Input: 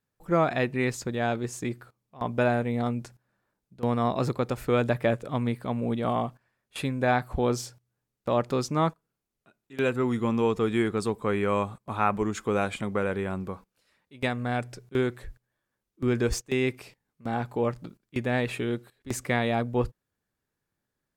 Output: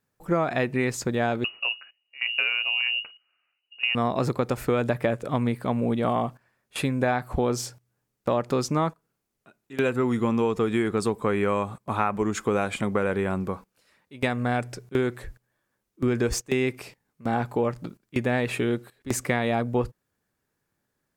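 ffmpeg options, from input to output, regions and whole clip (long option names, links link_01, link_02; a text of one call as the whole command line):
ffmpeg -i in.wav -filter_complex "[0:a]asettb=1/sr,asplit=3[link_01][link_02][link_03];[link_01]atrim=end=1.444[link_04];[link_02]atrim=start=1.44:end=3.95,asetpts=PTS-STARTPTS,afade=type=in:duration=0.004:curve=qsin,afade=type=out:start_time=2.506:duration=0.004:curve=qsin,equalizer=frequency=1200:width=1:gain=-7,lowpass=frequency=2600:width_type=q:width=0.5098,lowpass=frequency=2600:width_type=q:width=0.6013,lowpass=frequency=2600:width_type=q:width=0.9,lowpass=frequency=2600:width_type=q:width=2.563,afreqshift=-3000[link_05];[link_03]atrim=start=3.946[link_06];[link_04][link_05]acrossfade=duration=0.004:curve1=hsin:curve2=qsin[link_07];[link_07][link_06]acrossfade=duration=0.004:curve1=qsin:curve2=hsin,lowshelf=frequency=74:gain=-6,acompressor=threshold=-26dB:ratio=6,equalizer=frequency=3600:width_type=o:width=0.77:gain=-2.5,volume=6dB" out.wav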